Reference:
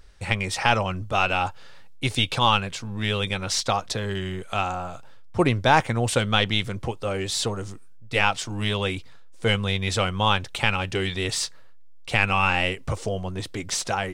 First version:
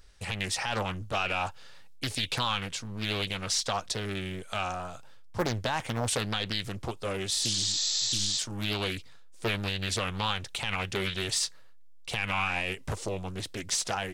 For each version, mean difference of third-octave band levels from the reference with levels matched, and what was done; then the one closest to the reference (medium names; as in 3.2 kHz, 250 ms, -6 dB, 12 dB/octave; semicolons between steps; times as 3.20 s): 4.5 dB: spectral replace 7.38–8.36 s, 380–7800 Hz before; treble shelf 3.1 kHz +7.5 dB; peak limiter -11.5 dBFS, peak gain reduction 9.5 dB; loudspeaker Doppler distortion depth 0.83 ms; trim -6 dB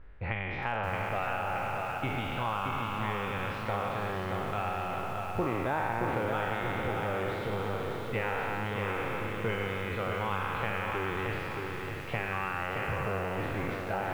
11.0 dB: spectral sustain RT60 2.32 s; compression 4:1, threshold -26 dBFS, peak gain reduction 14.5 dB; low-pass 2.3 kHz 24 dB/octave; bit-crushed delay 623 ms, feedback 55%, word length 8-bit, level -4.5 dB; trim -4 dB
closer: first